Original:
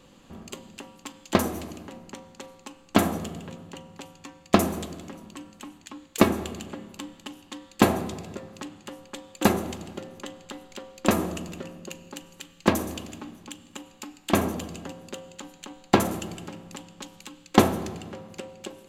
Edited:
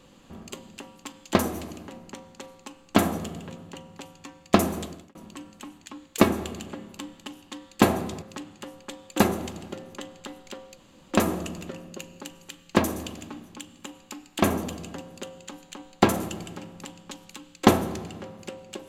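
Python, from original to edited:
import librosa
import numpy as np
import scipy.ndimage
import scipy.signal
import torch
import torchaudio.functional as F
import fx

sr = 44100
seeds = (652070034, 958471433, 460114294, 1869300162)

y = fx.edit(x, sr, fx.fade_out_span(start_s=4.86, length_s=0.29),
    fx.cut(start_s=8.22, length_s=0.25),
    fx.insert_room_tone(at_s=11.02, length_s=0.34), tone=tone)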